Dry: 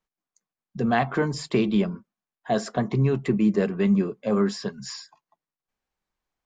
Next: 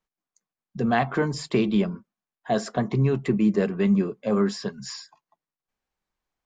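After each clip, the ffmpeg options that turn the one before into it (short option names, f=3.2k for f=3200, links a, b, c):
-af anull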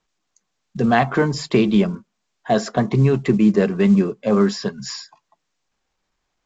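-af "volume=6dB" -ar 16000 -c:a pcm_mulaw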